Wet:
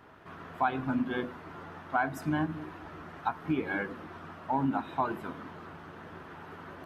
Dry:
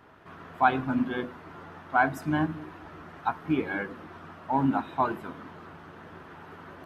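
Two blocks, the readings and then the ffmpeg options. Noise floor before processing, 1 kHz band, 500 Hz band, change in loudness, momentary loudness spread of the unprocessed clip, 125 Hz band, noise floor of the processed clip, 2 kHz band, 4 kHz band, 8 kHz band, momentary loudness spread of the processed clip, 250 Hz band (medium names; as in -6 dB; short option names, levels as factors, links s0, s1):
-48 dBFS, -4.5 dB, -3.5 dB, -4.5 dB, 21 LU, -3.0 dB, -48 dBFS, -4.5 dB, -3.0 dB, no reading, 16 LU, -3.5 dB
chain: -af "acompressor=threshold=0.0447:ratio=2.5"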